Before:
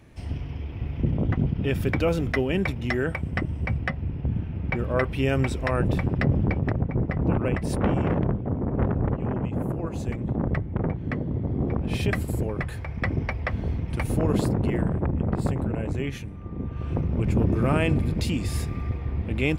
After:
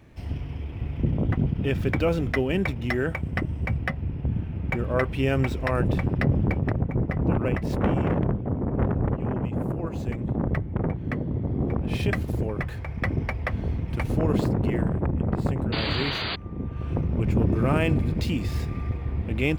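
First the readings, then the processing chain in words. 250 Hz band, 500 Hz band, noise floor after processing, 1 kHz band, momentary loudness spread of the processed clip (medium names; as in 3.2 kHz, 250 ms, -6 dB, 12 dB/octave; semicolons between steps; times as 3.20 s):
0.0 dB, 0.0 dB, -34 dBFS, +0.5 dB, 6 LU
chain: median filter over 5 samples; painted sound noise, 15.72–16.36 s, 200–4800 Hz -30 dBFS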